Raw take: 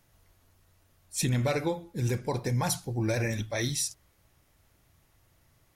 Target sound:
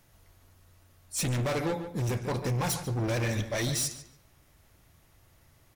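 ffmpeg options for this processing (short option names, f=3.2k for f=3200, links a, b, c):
-filter_complex "[0:a]volume=30.5dB,asoftclip=hard,volume=-30.5dB,asplit=2[a][b];[b]adelay=144,lowpass=f=3.3k:p=1,volume=-10dB,asplit=2[c][d];[d]adelay=144,lowpass=f=3.3k:p=1,volume=0.31,asplit=2[e][f];[f]adelay=144,lowpass=f=3.3k:p=1,volume=0.31[g];[c][e][g]amix=inputs=3:normalize=0[h];[a][h]amix=inputs=2:normalize=0,volume=3.5dB"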